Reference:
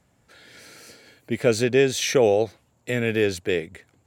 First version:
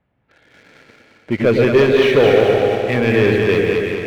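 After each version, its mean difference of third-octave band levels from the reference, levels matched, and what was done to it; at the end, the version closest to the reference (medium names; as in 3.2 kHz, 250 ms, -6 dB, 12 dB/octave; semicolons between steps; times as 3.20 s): 8.5 dB: backward echo that repeats 172 ms, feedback 62%, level -6.5 dB; low-pass 3 kHz 24 dB/octave; waveshaping leveller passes 2; on a send: two-band feedback delay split 580 Hz, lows 111 ms, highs 217 ms, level -3.5 dB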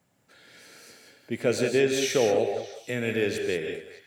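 4.0 dB: high-pass 110 Hz; on a send: repeats whose band climbs or falls 206 ms, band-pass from 590 Hz, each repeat 1.4 oct, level -10.5 dB; on the sum: bit crusher 12-bit; gated-style reverb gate 210 ms rising, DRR 4 dB; trim -5 dB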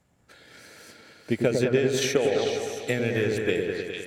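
6.0 dB: compression 4:1, threshold -19 dBFS, peak gain reduction 6 dB; repeats whose band climbs or falls 223 ms, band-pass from 1.3 kHz, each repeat 1.4 oct, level 0 dB; transient shaper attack +6 dB, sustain -3 dB; on a send: delay with an opening low-pass 102 ms, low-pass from 750 Hz, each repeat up 1 oct, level -3 dB; on the sum: trim -4 dB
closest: second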